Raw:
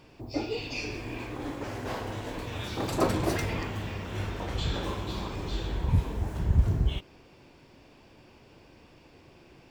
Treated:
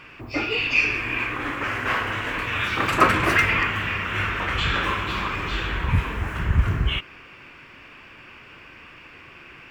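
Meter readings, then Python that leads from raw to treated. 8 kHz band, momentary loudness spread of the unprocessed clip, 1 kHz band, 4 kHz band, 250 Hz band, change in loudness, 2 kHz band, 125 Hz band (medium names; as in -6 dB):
+3.0 dB, 10 LU, +12.5 dB, +10.5 dB, +3.0 dB, +9.0 dB, +18.5 dB, +3.0 dB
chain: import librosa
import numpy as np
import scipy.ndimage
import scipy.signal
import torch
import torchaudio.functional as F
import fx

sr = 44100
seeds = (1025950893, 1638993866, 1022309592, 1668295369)

y = fx.band_shelf(x, sr, hz=1800.0, db=15.5, octaves=1.7)
y = y * librosa.db_to_amplitude(3.0)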